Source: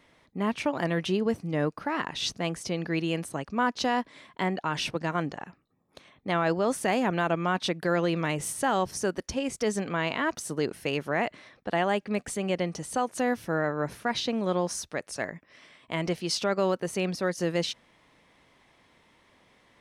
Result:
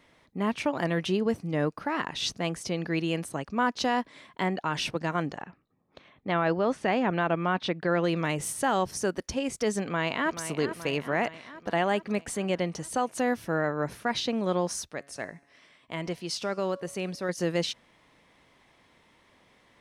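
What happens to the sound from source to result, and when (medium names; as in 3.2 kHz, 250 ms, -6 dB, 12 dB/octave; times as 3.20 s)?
5.42–8.04 s: low-pass 3.6 kHz
9.82–10.39 s: echo throw 430 ms, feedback 65%, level -10.5 dB
14.91–17.29 s: feedback comb 140 Hz, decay 1 s, mix 40%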